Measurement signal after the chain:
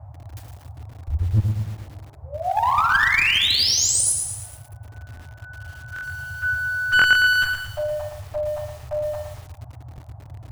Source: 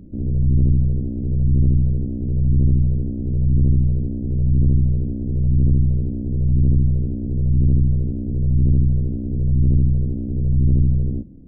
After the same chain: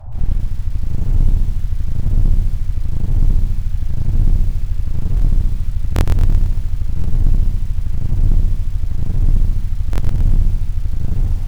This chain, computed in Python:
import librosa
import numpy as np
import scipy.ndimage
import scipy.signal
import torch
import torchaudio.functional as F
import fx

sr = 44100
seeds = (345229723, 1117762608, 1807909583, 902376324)

p1 = fx.room_shoebox(x, sr, seeds[0], volume_m3=240.0, walls='furnished', distance_m=6.0)
p2 = fx.dmg_noise_band(p1, sr, seeds[1], low_hz=71.0, high_hz=450.0, level_db=-25.0)
p3 = fx.over_compress(p2, sr, threshold_db=-2.0, ratio=-0.5)
p4 = scipy.signal.sosfilt(scipy.signal.cheby2(4, 40, [180.0, 490.0], 'bandstop', fs=sr, output='sos'), p3)
p5 = fx.peak_eq(p4, sr, hz=150.0, db=-4.5, octaves=0.27)
p6 = fx.clip_asym(p5, sr, top_db=-11.5, bottom_db=-1.0)
p7 = fx.dereverb_blind(p6, sr, rt60_s=0.51)
p8 = p7 + fx.echo_feedback(p7, sr, ms=75, feedback_pct=58, wet_db=-11, dry=0)
p9 = fx.buffer_glitch(p8, sr, at_s=(5.15, 5.94, 6.97, 9.91), block=1024, repeats=2)
p10 = fx.echo_crushed(p9, sr, ms=113, feedback_pct=55, bits=6, wet_db=-6)
y = p10 * librosa.db_to_amplitude(-4.5)